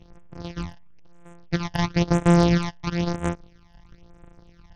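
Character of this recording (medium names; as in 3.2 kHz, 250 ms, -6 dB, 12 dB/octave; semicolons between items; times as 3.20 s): a buzz of ramps at a fixed pitch in blocks of 256 samples; phasing stages 12, 1 Hz, lowest notch 400–4700 Hz; SBC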